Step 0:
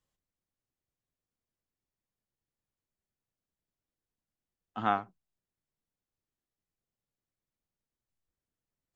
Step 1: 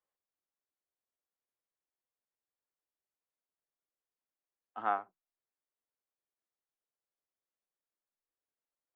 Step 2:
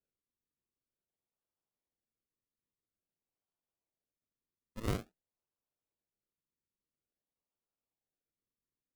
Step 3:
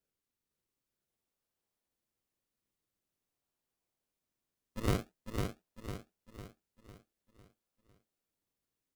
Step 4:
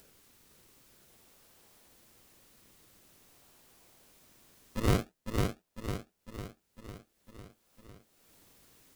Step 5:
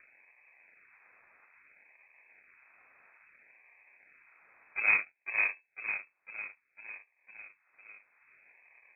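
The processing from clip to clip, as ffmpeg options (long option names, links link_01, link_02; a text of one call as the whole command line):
ffmpeg -i in.wav -filter_complex "[0:a]acrossover=split=350 2200:gain=0.0891 1 0.141[link_01][link_02][link_03];[link_01][link_02][link_03]amix=inputs=3:normalize=0,volume=-2.5dB" out.wav
ffmpeg -i in.wav -af "tiltshelf=frequency=970:gain=3.5,acrusher=samples=41:mix=1:aa=0.000001:lfo=1:lforange=41:lforate=0.49,volume=-3dB" out.wav
ffmpeg -i in.wav -af "aecho=1:1:502|1004|1506|2008|2510|3012:0.596|0.274|0.126|0.058|0.0267|0.0123,volume=3.5dB" out.wav
ffmpeg -i in.wav -filter_complex "[0:a]asplit=2[link_01][link_02];[link_02]acompressor=mode=upward:threshold=-41dB:ratio=2.5,volume=0.5dB[link_03];[link_01][link_03]amix=inputs=2:normalize=0,asoftclip=type=tanh:threshold=-14dB" out.wav
ffmpeg -i in.wav -af "acrusher=samples=25:mix=1:aa=0.000001:lfo=1:lforange=25:lforate=0.6,lowpass=frequency=2200:width_type=q:width=0.5098,lowpass=frequency=2200:width_type=q:width=0.6013,lowpass=frequency=2200:width_type=q:width=0.9,lowpass=frequency=2200:width_type=q:width=2.563,afreqshift=-2600" out.wav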